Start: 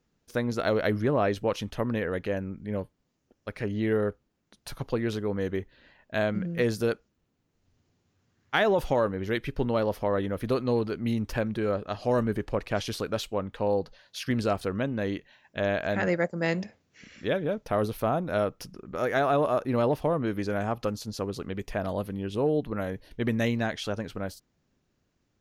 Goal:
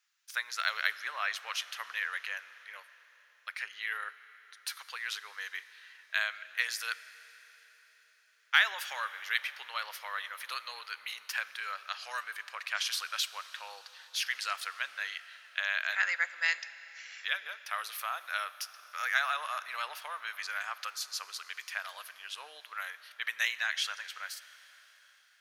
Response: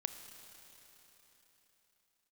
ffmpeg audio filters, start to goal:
-filter_complex "[0:a]highpass=f=1400:w=0.5412,highpass=f=1400:w=1.3066,asplit=2[s0][s1];[1:a]atrim=start_sample=2205,asetrate=41013,aresample=44100[s2];[s1][s2]afir=irnorm=-1:irlink=0,volume=0.794[s3];[s0][s3]amix=inputs=2:normalize=0"

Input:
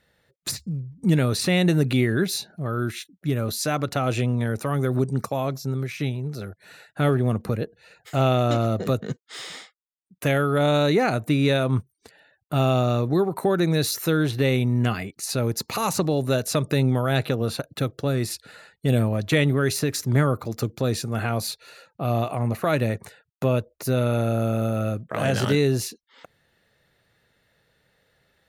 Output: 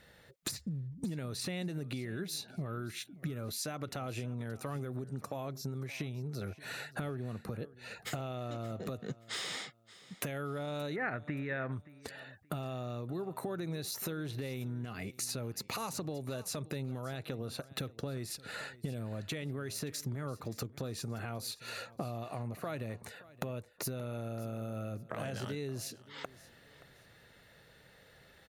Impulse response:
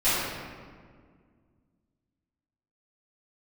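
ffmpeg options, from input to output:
-filter_complex "[0:a]alimiter=limit=0.112:level=0:latency=1:release=399,acompressor=threshold=0.00891:ratio=12,asettb=1/sr,asplit=3[s0][s1][s2];[s0]atrim=end=10.964[s3];[s1]atrim=start=10.96:end=11.72,asetpts=PTS-STARTPTS,afade=t=in:d=0.004:c=qsin,afade=t=out:st=0.756:d=0.004:c=qsin,lowpass=f=1800:t=q:w=5.2[s4];[s2]atrim=start=11.716[s5];[s3][s4]acrossfade=d=0.004:c1=hsin:c2=qsin[s6];[s6][s5]acrossfade=d=0.004:c1=qsin:c2=hsin,aecho=1:1:575|1150:0.112|0.0314,volume=1.88"

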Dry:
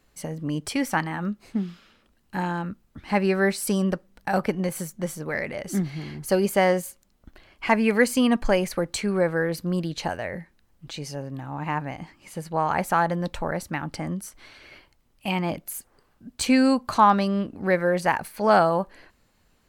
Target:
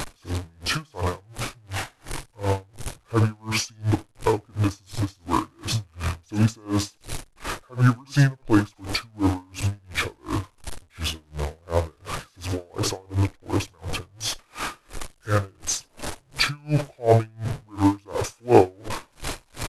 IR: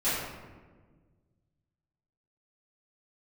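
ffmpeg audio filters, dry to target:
-filter_complex "[0:a]aeval=exprs='val(0)+0.5*0.0473*sgn(val(0))':c=same,equalizer=f=330:w=4.5:g=-11,asplit=2[s0][s1];[s1]acrusher=bits=5:mix=0:aa=0.5,volume=0.398[s2];[s0][s2]amix=inputs=2:normalize=0,asetrate=24750,aresample=44100,atempo=1.7818,asplit=2[s3][s4];[s4]aecho=0:1:73:0.251[s5];[s3][s5]amix=inputs=2:normalize=0,aeval=exprs='val(0)*pow(10,-36*(0.5-0.5*cos(2*PI*2.8*n/s))/20)':c=same,volume=1.33"

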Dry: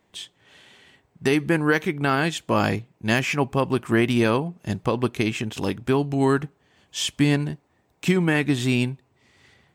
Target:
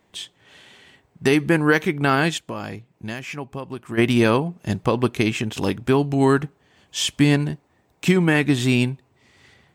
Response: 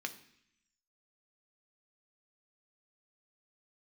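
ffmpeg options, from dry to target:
-filter_complex "[0:a]asplit=3[s0][s1][s2];[s0]afade=t=out:st=2.37:d=0.02[s3];[s1]acompressor=threshold=0.0141:ratio=2.5,afade=t=in:st=2.37:d=0.02,afade=t=out:st=3.97:d=0.02[s4];[s2]afade=t=in:st=3.97:d=0.02[s5];[s3][s4][s5]amix=inputs=3:normalize=0,volume=1.41"

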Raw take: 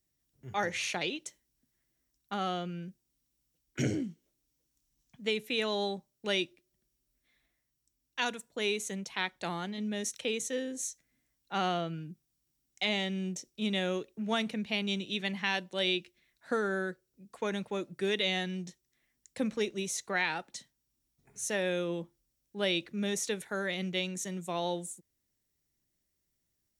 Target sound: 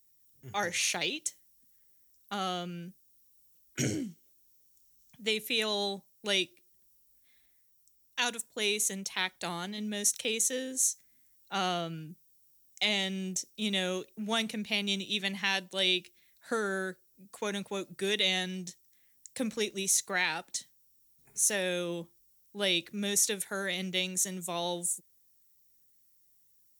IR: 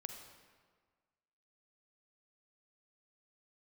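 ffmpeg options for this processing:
-af "aemphasis=mode=production:type=75kf,volume=0.841"

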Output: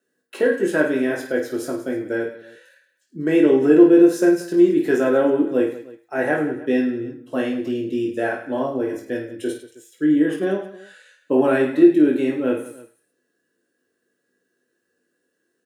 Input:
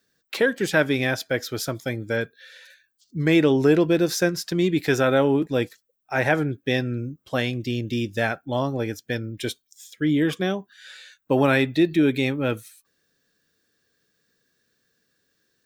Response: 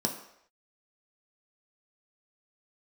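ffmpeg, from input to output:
-filter_complex "[0:a]aecho=1:1:20|52|103.2|185.1|316.2:0.631|0.398|0.251|0.158|0.1[s0];[1:a]atrim=start_sample=2205,asetrate=74970,aresample=44100[s1];[s0][s1]afir=irnorm=-1:irlink=0,volume=0.398"

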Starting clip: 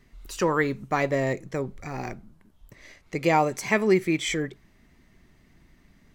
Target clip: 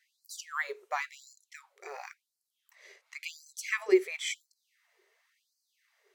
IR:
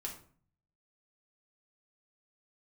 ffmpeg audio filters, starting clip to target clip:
-af "lowshelf=f=450:t=q:w=1.5:g=10.5,afftfilt=real='re*gte(b*sr/1024,360*pow(4200/360,0.5+0.5*sin(2*PI*0.94*pts/sr)))':imag='im*gte(b*sr/1024,360*pow(4200/360,0.5+0.5*sin(2*PI*0.94*pts/sr)))':win_size=1024:overlap=0.75,volume=0.562"

